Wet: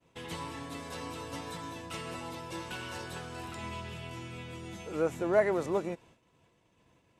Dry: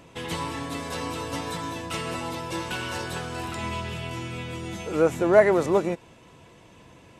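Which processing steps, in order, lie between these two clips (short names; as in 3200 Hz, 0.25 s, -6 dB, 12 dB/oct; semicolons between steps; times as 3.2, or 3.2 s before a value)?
expander -44 dBFS; gain -9 dB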